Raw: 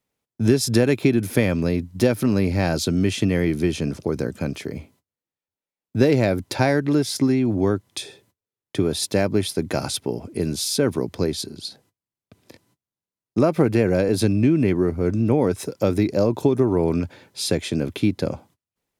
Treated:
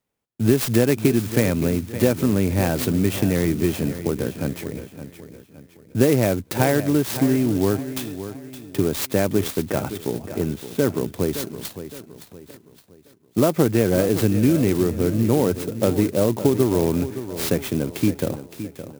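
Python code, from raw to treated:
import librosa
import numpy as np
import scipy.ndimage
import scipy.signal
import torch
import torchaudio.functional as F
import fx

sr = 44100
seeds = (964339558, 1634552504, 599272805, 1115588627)

p1 = fx.lowpass(x, sr, hz=3000.0, slope=24, at=(9.66, 10.95))
p2 = p1 + fx.echo_feedback(p1, sr, ms=566, feedback_pct=40, wet_db=-12.0, dry=0)
y = fx.clock_jitter(p2, sr, seeds[0], jitter_ms=0.056)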